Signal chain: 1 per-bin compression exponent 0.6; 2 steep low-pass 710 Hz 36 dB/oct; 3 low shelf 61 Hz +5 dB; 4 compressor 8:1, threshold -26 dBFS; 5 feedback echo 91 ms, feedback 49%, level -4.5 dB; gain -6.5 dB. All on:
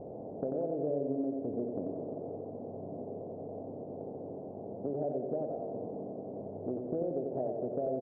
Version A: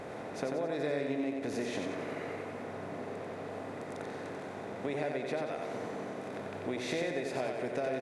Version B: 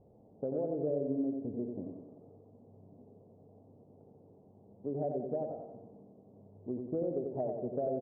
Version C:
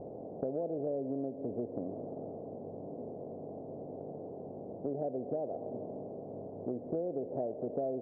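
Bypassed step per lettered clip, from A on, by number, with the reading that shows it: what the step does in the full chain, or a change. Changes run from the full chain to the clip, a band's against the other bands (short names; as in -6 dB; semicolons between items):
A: 2, 1 kHz band +5.0 dB; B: 1, 1 kHz band -2.0 dB; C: 5, echo-to-direct -3.5 dB to none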